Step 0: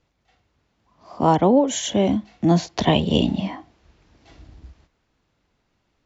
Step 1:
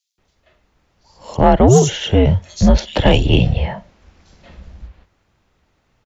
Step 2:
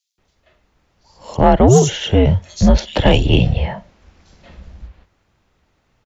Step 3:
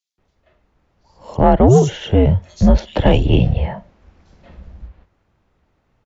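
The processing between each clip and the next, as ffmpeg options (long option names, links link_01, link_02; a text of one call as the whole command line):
ffmpeg -i in.wav -filter_complex "[0:a]acrossover=split=4300[link_01][link_02];[link_01]adelay=180[link_03];[link_03][link_02]amix=inputs=2:normalize=0,afreqshift=-120,acontrast=72,volume=1dB" out.wav
ffmpeg -i in.wav -af anull out.wav
ffmpeg -i in.wav -af "highshelf=frequency=2300:gain=-10.5" out.wav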